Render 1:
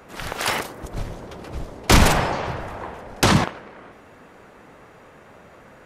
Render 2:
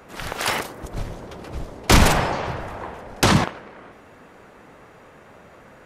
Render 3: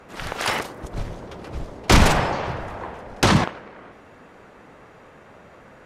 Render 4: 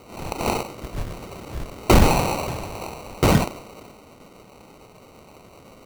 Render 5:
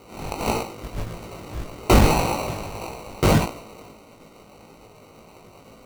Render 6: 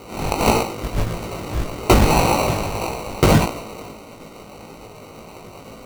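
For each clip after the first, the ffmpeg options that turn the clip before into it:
-af anull
-af "highshelf=f=11k:g=-11"
-af "acrusher=samples=26:mix=1:aa=0.000001"
-af "flanger=delay=17.5:depth=2.1:speed=1.7,volume=2.5dB"
-af "alimiter=limit=-13dB:level=0:latency=1:release=219,volume=8.5dB"

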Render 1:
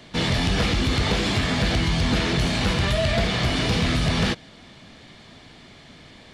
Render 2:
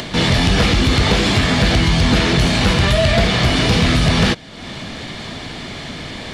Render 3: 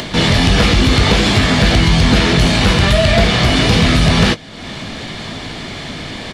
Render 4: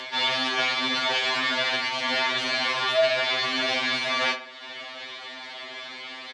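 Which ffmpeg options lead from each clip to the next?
-af "acompressor=mode=upward:threshold=-26dB:ratio=2.5,volume=7.5dB"
-filter_complex "[0:a]asplit=2[a][b];[b]adelay=19,volume=-13dB[c];[a][c]amix=inputs=2:normalize=0,volume=2.5dB"
-filter_complex "[0:a]highpass=720,lowpass=4.2k,asplit=2[a][b];[b]adelay=69,lowpass=f=2.4k:p=1,volume=-11dB,asplit=2[c][d];[d]adelay=69,lowpass=f=2.4k:p=1,volume=0.52,asplit=2[e][f];[f]adelay=69,lowpass=f=2.4k:p=1,volume=0.52,asplit=2[g][h];[h]adelay=69,lowpass=f=2.4k:p=1,volume=0.52,asplit=2[i][j];[j]adelay=69,lowpass=f=2.4k:p=1,volume=0.52,asplit=2[k][l];[l]adelay=69,lowpass=f=2.4k:p=1,volume=0.52[m];[a][c][e][g][i][k][m]amix=inputs=7:normalize=0,afftfilt=real='re*2.45*eq(mod(b,6),0)':imag='im*2.45*eq(mod(b,6),0)':win_size=2048:overlap=0.75,volume=-5dB"

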